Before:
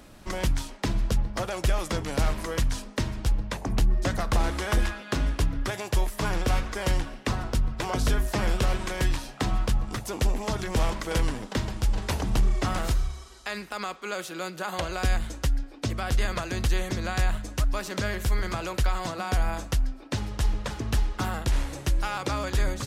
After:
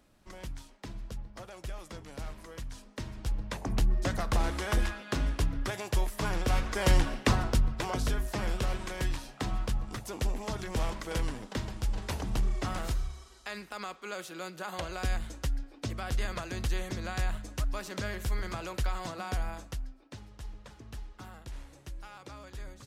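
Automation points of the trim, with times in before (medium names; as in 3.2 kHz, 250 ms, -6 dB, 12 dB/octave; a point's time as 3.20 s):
2.65 s -15.5 dB
3.60 s -4 dB
6.46 s -4 dB
7.12 s +4.5 dB
8.13 s -6.5 dB
19.27 s -6.5 dB
20.26 s -18 dB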